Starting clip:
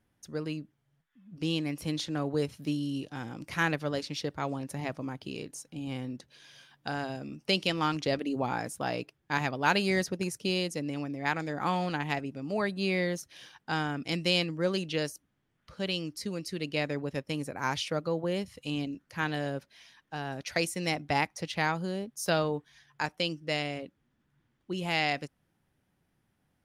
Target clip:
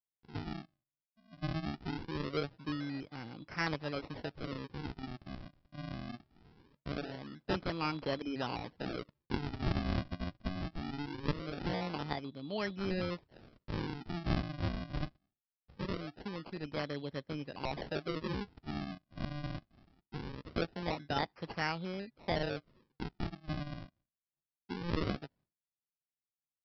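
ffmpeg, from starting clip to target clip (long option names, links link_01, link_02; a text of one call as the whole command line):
ffmpeg -i in.wav -af "agate=range=-33dB:threshold=-55dB:ratio=3:detection=peak,aresample=11025,acrusher=samples=14:mix=1:aa=0.000001:lfo=1:lforange=22.4:lforate=0.22,aresample=44100,volume=-6.5dB" out.wav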